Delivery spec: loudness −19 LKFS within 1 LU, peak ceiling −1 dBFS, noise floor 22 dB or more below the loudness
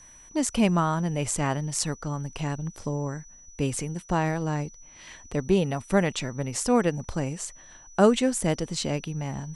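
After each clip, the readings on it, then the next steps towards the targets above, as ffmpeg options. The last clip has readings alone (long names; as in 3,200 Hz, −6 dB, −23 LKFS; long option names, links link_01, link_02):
interfering tone 5,900 Hz; level of the tone −49 dBFS; integrated loudness −27.0 LKFS; sample peak −5.0 dBFS; target loudness −19.0 LKFS
→ -af "bandreject=frequency=5900:width=30"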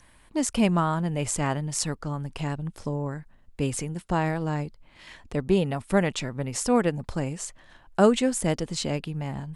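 interfering tone none found; integrated loudness −27.0 LKFS; sample peak −5.0 dBFS; target loudness −19.0 LKFS
→ -af "volume=8dB,alimiter=limit=-1dB:level=0:latency=1"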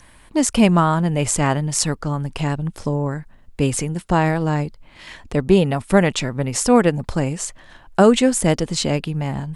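integrated loudness −19.5 LKFS; sample peak −1.0 dBFS; background noise floor −48 dBFS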